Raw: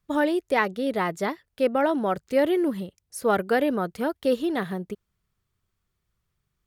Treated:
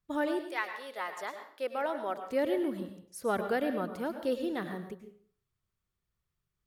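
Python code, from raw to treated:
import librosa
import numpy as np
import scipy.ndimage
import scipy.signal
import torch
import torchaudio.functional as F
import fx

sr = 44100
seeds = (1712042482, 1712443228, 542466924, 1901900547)

y = fx.highpass(x, sr, hz=fx.line((0.41, 1100.0), (2.22, 380.0)), slope=12, at=(0.41, 2.22), fade=0.02)
y = fx.rev_plate(y, sr, seeds[0], rt60_s=0.51, hf_ratio=0.8, predelay_ms=90, drr_db=7.5)
y = F.gain(torch.from_numpy(y), -8.5).numpy()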